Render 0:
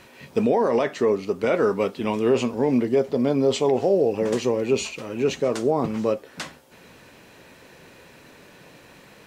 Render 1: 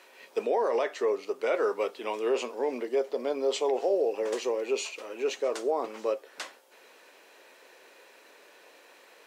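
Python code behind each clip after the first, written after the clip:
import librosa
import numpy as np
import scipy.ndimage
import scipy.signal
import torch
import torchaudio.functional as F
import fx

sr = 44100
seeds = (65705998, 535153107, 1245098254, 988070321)

y = scipy.signal.sosfilt(scipy.signal.butter(4, 380.0, 'highpass', fs=sr, output='sos'), x)
y = y * librosa.db_to_amplitude(-5.0)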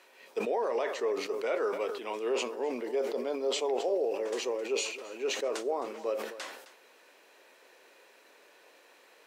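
y = x + 10.0 ** (-15.5 / 20.0) * np.pad(x, (int(263 * sr / 1000.0), 0))[:len(x)]
y = fx.sustainer(y, sr, db_per_s=63.0)
y = y * librosa.db_to_amplitude(-4.0)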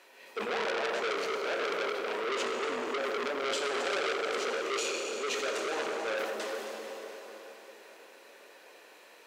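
y = fx.rev_plate(x, sr, seeds[0], rt60_s=3.9, hf_ratio=0.9, predelay_ms=0, drr_db=-0.5)
y = fx.transformer_sat(y, sr, knee_hz=3200.0)
y = y * librosa.db_to_amplitude(1.0)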